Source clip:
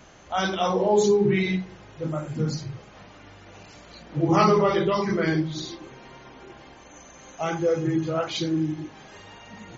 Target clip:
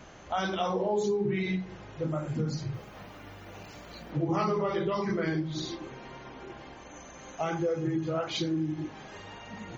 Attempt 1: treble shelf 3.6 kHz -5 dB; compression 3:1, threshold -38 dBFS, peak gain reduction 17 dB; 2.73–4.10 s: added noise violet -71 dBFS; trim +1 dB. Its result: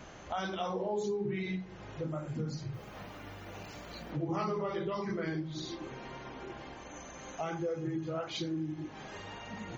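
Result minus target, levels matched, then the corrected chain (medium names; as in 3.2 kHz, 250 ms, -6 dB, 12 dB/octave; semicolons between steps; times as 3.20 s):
compression: peak gain reduction +5.5 dB
treble shelf 3.6 kHz -5 dB; compression 3:1, threshold -29.5 dBFS, peak gain reduction 11.5 dB; 2.73–4.10 s: added noise violet -71 dBFS; trim +1 dB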